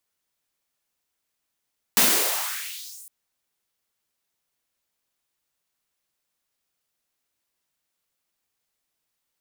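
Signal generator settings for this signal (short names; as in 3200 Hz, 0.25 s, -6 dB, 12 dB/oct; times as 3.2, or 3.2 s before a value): swept filtered noise white, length 1.11 s highpass, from 170 Hz, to 10000 Hz, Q 2.2, exponential, gain ramp -30.5 dB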